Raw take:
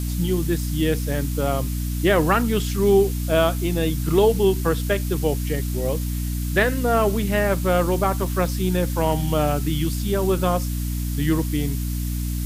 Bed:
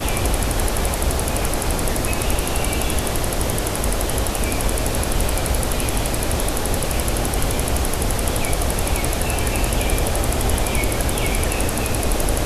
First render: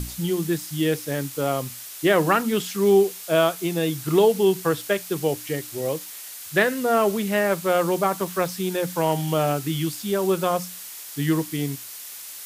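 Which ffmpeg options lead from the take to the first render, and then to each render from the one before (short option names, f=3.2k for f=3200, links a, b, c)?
-af "bandreject=f=60:t=h:w=6,bandreject=f=120:t=h:w=6,bandreject=f=180:t=h:w=6,bandreject=f=240:t=h:w=6,bandreject=f=300:t=h:w=6"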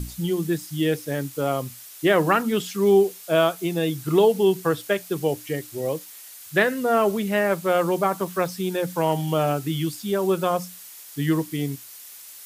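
-af "afftdn=nr=6:nf=-38"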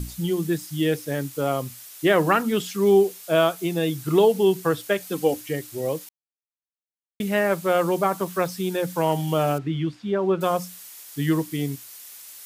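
-filter_complex "[0:a]asettb=1/sr,asplit=3[a][b][c];[a]atrim=end=5.004[d];[b]atrim=start=5:end=5.41,asetpts=PTS-STARTPTS,afade=t=in:d=0.004:c=qsin,afade=t=out:st=0.406:d=0.004:c=qsin,aecho=1:1:3.9:0.7,atrim=end_sample=18081[e];[c]atrim=start=5.406[f];[d][e]acrossfade=d=0.004:c1=hsin:c2=qsin[g];[g][f]acrossfade=d=0.004:c1=qsin:c2=hsin,asettb=1/sr,asplit=3[h][i][j];[h]atrim=end=9.584[k];[i]atrim=start=9.58:end=10.41,asetpts=PTS-STARTPTS,afade=t=in:d=0.004:c=qsin,afade=t=out:st=0.826:d=0.004:c=qsin,lowpass=2.4k[l];[j]atrim=start=10.406[m];[k][l]acrossfade=d=0.004:c1=hsin:c2=qsin[n];[n][m]acrossfade=d=0.004:c1=qsin:c2=hsin,asplit=3[o][p][q];[o]atrim=end=6.09,asetpts=PTS-STARTPTS,afade=t=out:st=6.086:d=0.004:c=hsin[r];[p]atrim=start=6.09:end=7.2,asetpts=PTS-STARTPTS,volume=0[s];[q]atrim=start=7.2,asetpts=PTS-STARTPTS,afade=t=in:d=0.004:c=hsin[t];[r][s][t]concat=n=3:v=0:a=1"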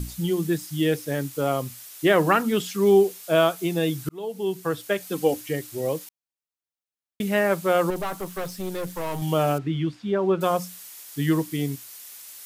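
-filter_complex "[0:a]asettb=1/sr,asplit=3[a][b][c];[a]atrim=end=7.904[d];[b]atrim=start=7.9:end=9.22,asetpts=PTS-STARTPTS,afade=t=in:d=0.004:c=qsin,afade=t=out:st=1.316:d=0.004:c=qsin,aeval=exprs='(tanh(17.8*val(0)+0.55)-tanh(0.55))/17.8':c=same[e];[c]atrim=start=9.216[f];[d][e]acrossfade=d=0.004:c1=hsin:c2=qsin[g];[g][f]acrossfade=d=0.004:c1=qsin:c2=hsin,asplit=2[h][i];[h]atrim=end=4.09,asetpts=PTS-STARTPTS,afade=t=out:st=4.086:d=0.004:c=hsin[j];[i]atrim=start=4.09,asetpts=PTS-STARTPTS,afade=t=in:d=1.4:c=qsin[k];[j][k]concat=n=2:v=0:a=1"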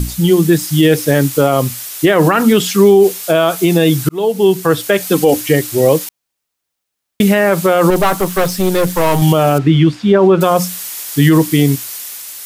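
-af "dynaudnorm=f=120:g=9:m=3.5dB,alimiter=level_in=13.5dB:limit=-1dB:release=50:level=0:latency=1"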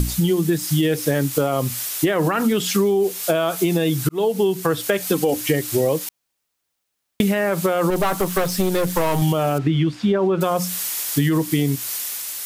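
-af "acompressor=threshold=-16dB:ratio=6"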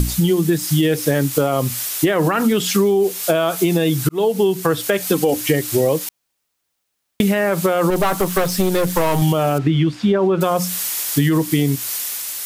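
-af "volume=2.5dB,alimiter=limit=-2dB:level=0:latency=1"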